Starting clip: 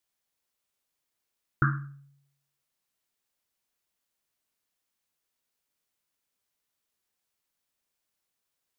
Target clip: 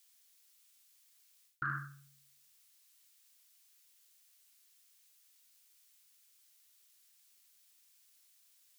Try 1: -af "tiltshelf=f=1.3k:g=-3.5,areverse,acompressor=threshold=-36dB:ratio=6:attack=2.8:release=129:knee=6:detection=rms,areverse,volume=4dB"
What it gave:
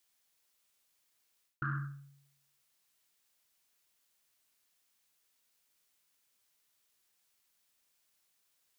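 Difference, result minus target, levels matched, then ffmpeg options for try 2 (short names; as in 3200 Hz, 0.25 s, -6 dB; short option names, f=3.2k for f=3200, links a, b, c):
1000 Hz band -3.0 dB
-af "tiltshelf=f=1.3k:g=-12.5,areverse,acompressor=threshold=-36dB:ratio=6:attack=2.8:release=129:knee=6:detection=rms,areverse,volume=4dB"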